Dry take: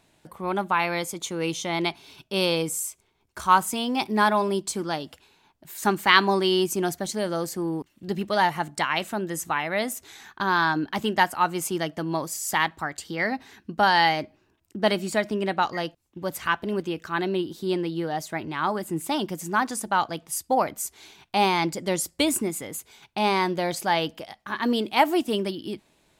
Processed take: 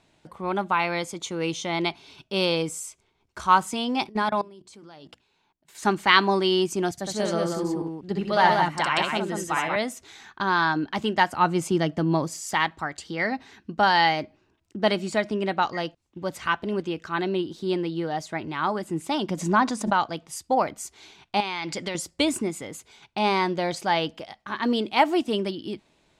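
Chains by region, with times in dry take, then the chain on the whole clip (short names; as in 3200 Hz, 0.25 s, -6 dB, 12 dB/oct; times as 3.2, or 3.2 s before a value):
4.09–5.75 level quantiser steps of 23 dB + notches 60/120/180/240/300/360 Hz
6.91–9.76 tapped delay 64/188 ms -4/-3.5 dB + three-band expander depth 40%
11.32–12.41 HPF 60 Hz + low shelf 360 Hz +9.5 dB
19.29–19.93 bell 14000 Hz -5 dB 1.1 oct + small resonant body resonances 220/610/1000/3800 Hz, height 6 dB, ringing for 20 ms + backwards sustainer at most 89 dB/s
21.4–21.95 bell 2700 Hz +10.5 dB 2.7 oct + compressor 16:1, threshold -25 dBFS
whole clip: LPF 6900 Hz 12 dB/oct; notch 1700 Hz, Q 30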